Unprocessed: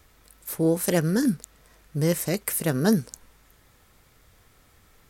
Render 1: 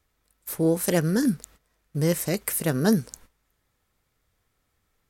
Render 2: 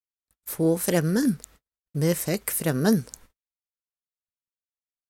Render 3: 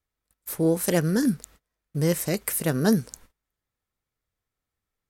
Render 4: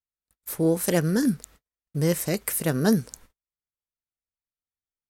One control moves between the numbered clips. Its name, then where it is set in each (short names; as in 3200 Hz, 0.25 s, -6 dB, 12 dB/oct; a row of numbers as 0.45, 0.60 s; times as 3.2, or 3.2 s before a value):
gate, range: -15, -60, -28, -46 dB